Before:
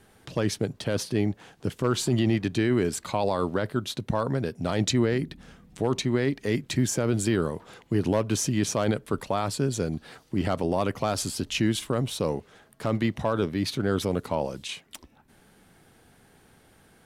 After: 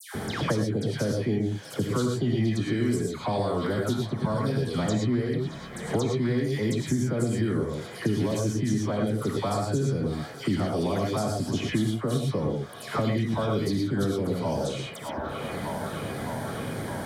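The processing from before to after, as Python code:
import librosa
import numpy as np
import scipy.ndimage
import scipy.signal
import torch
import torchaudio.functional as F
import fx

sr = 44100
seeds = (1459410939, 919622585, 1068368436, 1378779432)

p1 = scipy.signal.sosfilt(scipy.signal.butter(2, 120.0, 'highpass', fs=sr, output='sos'), x)
p2 = fx.low_shelf(p1, sr, hz=280.0, db=10.5)
p3 = fx.notch(p2, sr, hz=2700.0, q=5.7)
p4 = fx.dispersion(p3, sr, late='lows', ms=144.0, hz=1800.0)
p5 = p4 + fx.echo_wet_bandpass(p4, sr, ms=613, feedback_pct=62, hz=1400.0, wet_db=-16, dry=0)
p6 = fx.rev_gated(p5, sr, seeds[0], gate_ms=140, shape='rising', drr_db=0.5)
p7 = fx.band_squash(p6, sr, depth_pct=100)
y = p7 * 10.0 ** (-7.5 / 20.0)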